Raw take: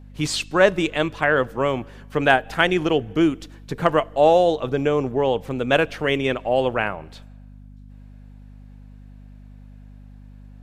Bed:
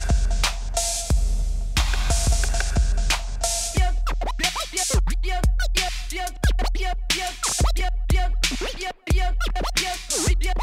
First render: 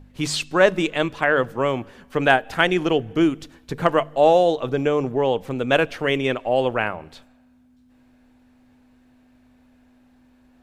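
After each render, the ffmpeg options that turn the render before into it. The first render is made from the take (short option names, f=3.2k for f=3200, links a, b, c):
-af "bandreject=f=50:t=h:w=4,bandreject=f=100:t=h:w=4,bandreject=f=150:t=h:w=4,bandreject=f=200:t=h:w=4"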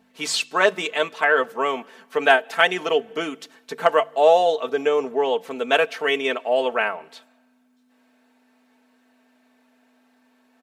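-af "highpass=440,aecho=1:1:4.5:0.71"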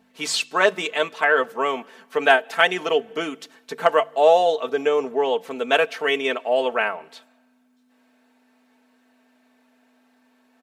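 -af anull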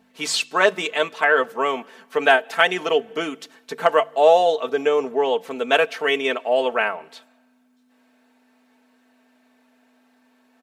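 -af "volume=1dB,alimiter=limit=-2dB:level=0:latency=1"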